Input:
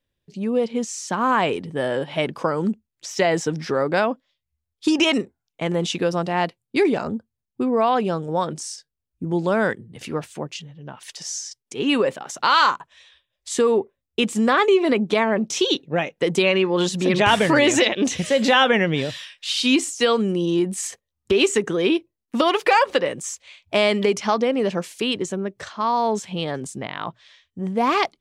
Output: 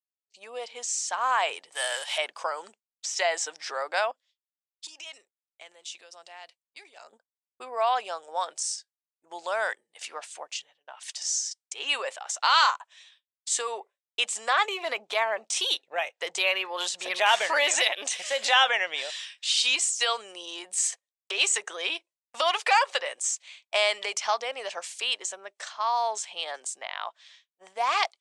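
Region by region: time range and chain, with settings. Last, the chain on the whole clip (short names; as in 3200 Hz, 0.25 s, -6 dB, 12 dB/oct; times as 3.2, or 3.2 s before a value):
1.72–2.18 G.711 law mismatch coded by mu + tilt +4.5 dB/oct
4.11–7.13 bell 930 Hz -8 dB 2.1 oct + compressor 8:1, threshold -34 dBFS
14.65–18.46 low shelf 130 Hz +12 dB + decimation joined by straight lines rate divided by 3×
whole clip: elliptic band-pass 670–8500 Hz, stop band 80 dB; expander -49 dBFS; high shelf 4700 Hz +11 dB; gain -4.5 dB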